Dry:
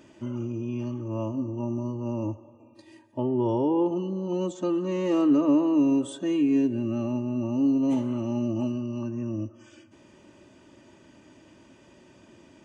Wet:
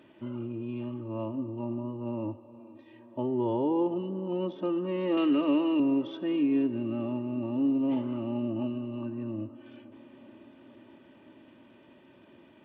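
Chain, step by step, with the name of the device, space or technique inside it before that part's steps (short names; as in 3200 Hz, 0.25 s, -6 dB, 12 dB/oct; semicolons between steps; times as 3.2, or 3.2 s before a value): 5.17–5.8 weighting filter D; tape echo 0.471 s, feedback 85%, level -20 dB, low-pass 3400 Hz; Bluetooth headset (HPF 150 Hz 6 dB/oct; downsampling 8000 Hz; gain -2.5 dB; SBC 64 kbps 32000 Hz)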